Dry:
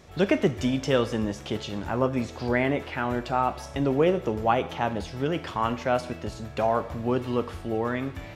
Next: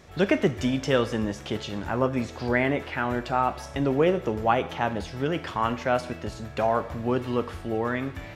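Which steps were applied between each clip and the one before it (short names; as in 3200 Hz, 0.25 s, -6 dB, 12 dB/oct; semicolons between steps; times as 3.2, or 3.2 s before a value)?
bell 1700 Hz +3 dB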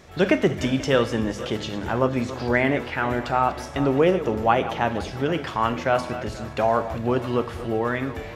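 regenerating reverse delay 0.242 s, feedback 48%, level -13 dB; notches 50/100/150/200/250 Hz; gain +3 dB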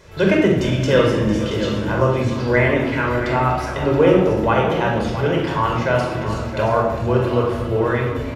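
echo 0.676 s -11 dB; shoebox room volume 2300 m³, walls furnished, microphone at 5 m; gain -1 dB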